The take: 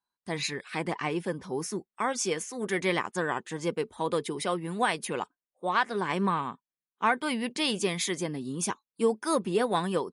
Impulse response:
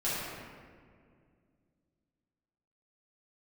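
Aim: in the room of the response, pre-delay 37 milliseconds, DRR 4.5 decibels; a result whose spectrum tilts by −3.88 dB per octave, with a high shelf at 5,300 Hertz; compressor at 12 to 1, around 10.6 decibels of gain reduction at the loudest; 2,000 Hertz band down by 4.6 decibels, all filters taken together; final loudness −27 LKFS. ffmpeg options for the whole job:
-filter_complex "[0:a]equalizer=frequency=2000:width_type=o:gain=-7,highshelf=frequency=5300:gain=6.5,acompressor=threshold=-31dB:ratio=12,asplit=2[link_01][link_02];[1:a]atrim=start_sample=2205,adelay=37[link_03];[link_02][link_03]afir=irnorm=-1:irlink=0,volume=-13dB[link_04];[link_01][link_04]amix=inputs=2:normalize=0,volume=8dB"

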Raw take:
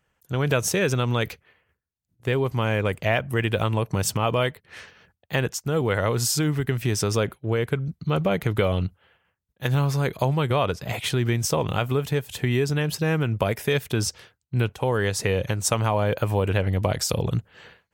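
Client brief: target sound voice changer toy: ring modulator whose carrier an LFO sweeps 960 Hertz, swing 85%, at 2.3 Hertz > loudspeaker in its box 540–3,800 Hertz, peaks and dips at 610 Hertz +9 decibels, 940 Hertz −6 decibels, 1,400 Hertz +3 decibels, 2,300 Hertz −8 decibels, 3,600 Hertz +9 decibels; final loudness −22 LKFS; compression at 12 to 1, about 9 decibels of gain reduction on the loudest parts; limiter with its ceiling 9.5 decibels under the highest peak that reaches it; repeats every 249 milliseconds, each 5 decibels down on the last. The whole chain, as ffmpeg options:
ffmpeg -i in.wav -af "acompressor=threshold=-27dB:ratio=12,alimiter=limit=-23dB:level=0:latency=1,aecho=1:1:249|498|747|996|1245|1494|1743:0.562|0.315|0.176|0.0988|0.0553|0.031|0.0173,aeval=exprs='val(0)*sin(2*PI*960*n/s+960*0.85/2.3*sin(2*PI*2.3*n/s))':channel_layout=same,highpass=540,equalizer=frequency=610:width_type=q:width=4:gain=9,equalizer=frequency=940:width_type=q:width=4:gain=-6,equalizer=frequency=1400:width_type=q:width=4:gain=3,equalizer=frequency=2300:width_type=q:width=4:gain=-8,equalizer=frequency=3600:width_type=q:width=4:gain=9,lowpass=frequency=3800:width=0.5412,lowpass=frequency=3800:width=1.3066,volume=13.5dB" out.wav

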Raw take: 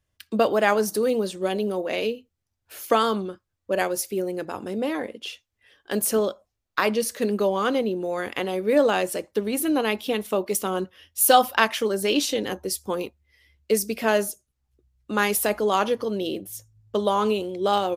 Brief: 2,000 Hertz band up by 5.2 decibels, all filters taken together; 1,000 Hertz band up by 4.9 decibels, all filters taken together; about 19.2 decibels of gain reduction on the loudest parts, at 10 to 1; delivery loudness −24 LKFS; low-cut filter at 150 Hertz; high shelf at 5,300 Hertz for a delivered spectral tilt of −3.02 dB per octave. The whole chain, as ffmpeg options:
ffmpeg -i in.wav -af "highpass=150,equalizer=frequency=1000:width_type=o:gain=5.5,equalizer=frequency=2000:width_type=o:gain=4,highshelf=frequency=5300:gain=6,acompressor=threshold=-27dB:ratio=10,volume=8dB" out.wav

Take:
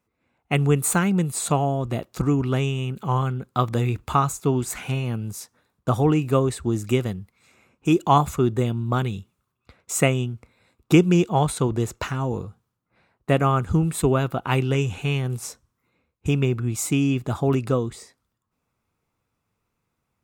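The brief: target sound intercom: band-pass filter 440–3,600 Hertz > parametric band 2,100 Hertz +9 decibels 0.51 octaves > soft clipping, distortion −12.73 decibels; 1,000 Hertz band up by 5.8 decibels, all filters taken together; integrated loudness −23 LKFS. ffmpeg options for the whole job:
ffmpeg -i in.wav -af "highpass=440,lowpass=3600,equalizer=frequency=1000:width_type=o:gain=7,equalizer=frequency=2100:width_type=o:width=0.51:gain=9,asoftclip=threshold=-9.5dB,volume=2.5dB" out.wav

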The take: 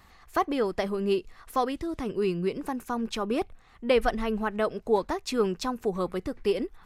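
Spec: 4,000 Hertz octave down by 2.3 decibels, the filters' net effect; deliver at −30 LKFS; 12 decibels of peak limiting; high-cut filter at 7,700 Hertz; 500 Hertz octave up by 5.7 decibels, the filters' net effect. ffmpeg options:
ffmpeg -i in.wav -af "lowpass=7700,equalizer=frequency=500:width_type=o:gain=7,equalizer=frequency=4000:width_type=o:gain=-3,volume=-1.5dB,alimiter=limit=-19.5dB:level=0:latency=1" out.wav

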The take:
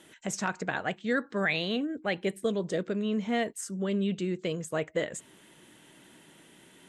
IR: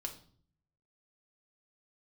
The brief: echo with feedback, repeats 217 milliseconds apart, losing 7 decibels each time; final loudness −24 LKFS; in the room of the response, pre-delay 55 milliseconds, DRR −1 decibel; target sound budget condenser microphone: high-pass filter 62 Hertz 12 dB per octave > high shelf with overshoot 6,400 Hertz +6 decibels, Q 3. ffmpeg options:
-filter_complex "[0:a]aecho=1:1:217|434|651|868|1085:0.447|0.201|0.0905|0.0407|0.0183,asplit=2[link_01][link_02];[1:a]atrim=start_sample=2205,adelay=55[link_03];[link_02][link_03]afir=irnorm=-1:irlink=0,volume=2.5dB[link_04];[link_01][link_04]amix=inputs=2:normalize=0,highpass=62,highshelf=frequency=6400:width_type=q:width=3:gain=6,volume=1.5dB"

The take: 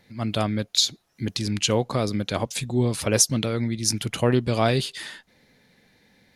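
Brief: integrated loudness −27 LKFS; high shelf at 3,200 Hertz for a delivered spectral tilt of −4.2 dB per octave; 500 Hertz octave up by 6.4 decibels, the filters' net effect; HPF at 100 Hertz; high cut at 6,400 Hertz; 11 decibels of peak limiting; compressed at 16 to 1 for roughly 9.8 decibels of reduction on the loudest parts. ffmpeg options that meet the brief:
ffmpeg -i in.wav -af "highpass=100,lowpass=6400,equalizer=frequency=500:width_type=o:gain=7.5,highshelf=frequency=3200:gain=8.5,acompressor=threshold=-20dB:ratio=16,volume=2.5dB,alimiter=limit=-16dB:level=0:latency=1" out.wav

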